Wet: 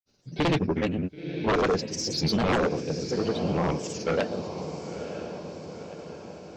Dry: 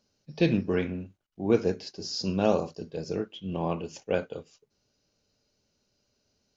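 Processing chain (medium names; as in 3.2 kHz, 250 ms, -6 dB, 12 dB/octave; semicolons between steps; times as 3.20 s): granulator, pitch spread up and down by 3 st; echo that smears into a reverb 990 ms, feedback 56%, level -12 dB; sine folder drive 7 dB, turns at -15 dBFS; trim -4 dB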